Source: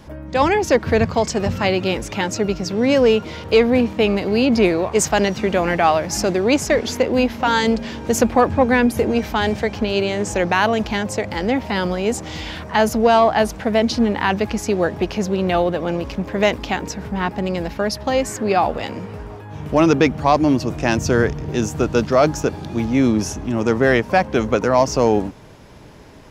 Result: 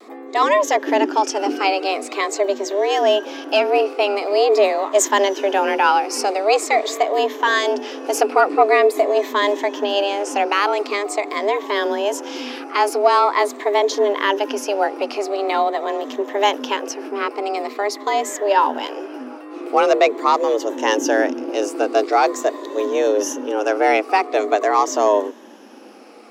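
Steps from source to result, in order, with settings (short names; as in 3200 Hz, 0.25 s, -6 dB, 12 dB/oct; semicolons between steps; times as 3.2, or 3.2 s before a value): moving spectral ripple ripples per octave 0.99, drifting -0.45 Hz, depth 8 dB; frequency shift +200 Hz; vibrato 0.31 Hz 14 cents; gain -1 dB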